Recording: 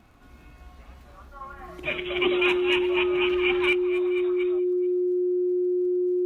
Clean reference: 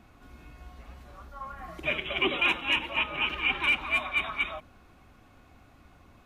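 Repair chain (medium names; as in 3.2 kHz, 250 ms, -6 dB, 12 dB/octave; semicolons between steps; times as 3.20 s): de-click; band-stop 360 Hz, Q 30; inverse comb 433 ms -22 dB; gain correction +10.5 dB, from 3.73 s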